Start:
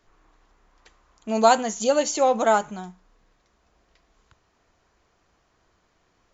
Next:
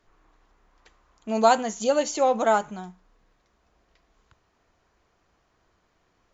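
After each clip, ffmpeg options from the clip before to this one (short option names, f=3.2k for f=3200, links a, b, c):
-af "highshelf=f=5.7k:g=-5,volume=-1.5dB"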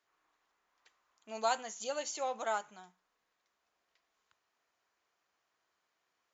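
-af "highpass=f=1.3k:p=1,volume=-8dB"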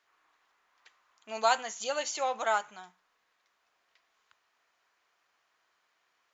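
-af "equalizer=f=2k:w=0.31:g=8.5"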